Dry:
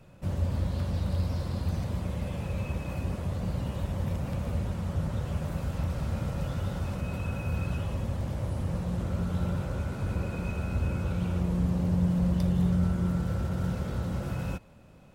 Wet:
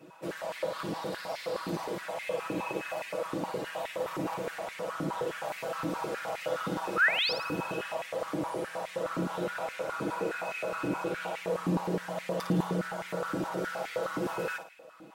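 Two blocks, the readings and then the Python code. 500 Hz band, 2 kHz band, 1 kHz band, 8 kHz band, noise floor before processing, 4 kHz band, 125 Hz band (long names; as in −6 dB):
+6.5 dB, +12.0 dB, +8.0 dB, +3.5 dB, −51 dBFS, +10.0 dB, −13.5 dB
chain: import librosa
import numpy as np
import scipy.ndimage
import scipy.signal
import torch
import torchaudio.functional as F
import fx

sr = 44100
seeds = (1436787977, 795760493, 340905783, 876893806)

p1 = x + 0.82 * np.pad(x, (int(6.2 * sr / 1000.0), 0))[:len(x)]
p2 = fx.spec_paint(p1, sr, seeds[0], shape='rise', start_s=6.96, length_s=0.37, low_hz=1200.0, high_hz=5600.0, level_db=-33.0)
p3 = p2 + fx.room_flutter(p2, sr, wall_m=9.5, rt60_s=0.44, dry=0)
y = fx.filter_held_highpass(p3, sr, hz=9.6, low_hz=300.0, high_hz=2100.0)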